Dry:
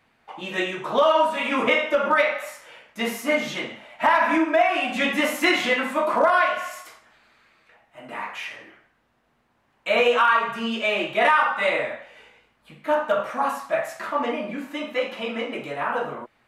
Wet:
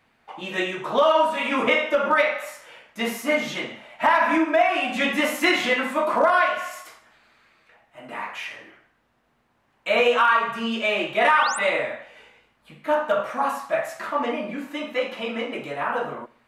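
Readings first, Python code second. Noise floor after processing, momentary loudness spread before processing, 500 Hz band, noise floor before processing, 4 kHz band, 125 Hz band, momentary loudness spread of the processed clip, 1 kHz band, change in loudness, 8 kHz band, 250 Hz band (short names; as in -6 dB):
-66 dBFS, 14 LU, 0.0 dB, -66 dBFS, 0.0 dB, n/a, 15 LU, 0.0 dB, 0.0 dB, +2.0 dB, 0.0 dB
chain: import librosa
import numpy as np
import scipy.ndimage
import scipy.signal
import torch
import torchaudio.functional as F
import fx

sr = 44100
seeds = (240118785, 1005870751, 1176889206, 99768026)

p1 = x + fx.echo_feedback(x, sr, ms=66, feedback_pct=52, wet_db=-22.0, dry=0)
y = fx.spec_paint(p1, sr, seeds[0], shape='rise', start_s=11.28, length_s=0.31, low_hz=1100.0, high_hz=10000.0, level_db=-32.0)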